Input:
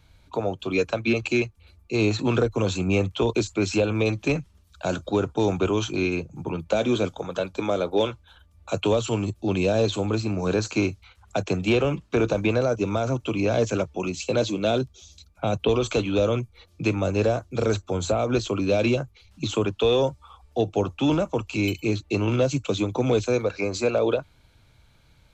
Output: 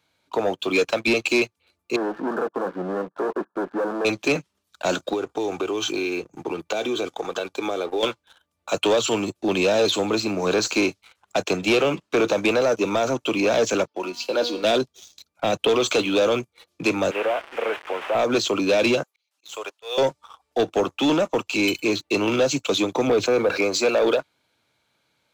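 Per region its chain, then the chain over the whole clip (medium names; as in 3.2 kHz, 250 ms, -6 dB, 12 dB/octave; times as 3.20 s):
1.96–4.05 s: hard clipper -26 dBFS + brick-wall FIR band-pass 150–1800 Hz
5.13–8.03 s: comb 2.6 ms, depth 40% + compression 4:1, threshold -27 dBFS
13.87–14.64 s: cabinet simulation 150–6500 Hz, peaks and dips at 340 Hz +7 dB, 570 Hz +7 dB, 920 Hz +8 dB, 1.4 kHz +9 dB, 3.1 kHz +5 dB, 4.7 kHz +9 dB + feedback comb 240 Hz, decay 0.86 s, mix 70%
17.11–18.15 s: one-bit delta coder 16 kbps, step -32.5 dBFS + high-pass 610 Hz
19.03–19.98 s: high-pass 520 Hz 24 dB/octave + treble shelf 6.1 kHz +9 dB + slow attack 506 ms
23.07–23.62 s: low-pass 1.4 kHz 6 dB/octave + level flattener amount 50%
whole clip: high-pass 280 Hz 12 dB/octave; dynamic bell 4.2 kHz, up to +4 dB, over -42 dBFS, Q 0.88; waveshaping leveller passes 2; trim -1.5 dB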